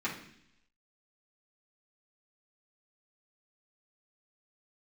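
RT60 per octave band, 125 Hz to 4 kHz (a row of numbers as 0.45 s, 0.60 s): 0.85 s, 0.85 s, 0.75 s, 0.65 s, 0.85 s, 0.95 s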